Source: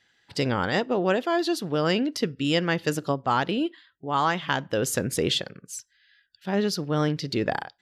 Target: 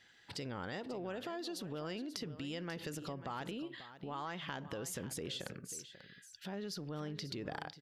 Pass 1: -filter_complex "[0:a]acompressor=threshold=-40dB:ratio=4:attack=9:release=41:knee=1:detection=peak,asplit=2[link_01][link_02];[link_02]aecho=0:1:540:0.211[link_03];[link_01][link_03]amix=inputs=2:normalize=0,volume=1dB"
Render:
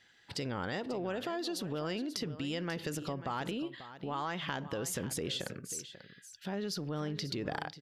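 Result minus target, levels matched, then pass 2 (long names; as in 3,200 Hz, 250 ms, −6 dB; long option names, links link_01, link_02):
downward compressor: peak gain reduction −5.5 dB
-filter_complex "[0:a]acompressor=threshold=-47.5dB:ratio=4:attack=9:release=41:knee=1:detection=peak,asplit=2[link_01][link_02];[link_02]aecho=0:1:540:0.211[link_03];[link_01][link_03]amix=inputs=2:normalize=0,volume=1dB"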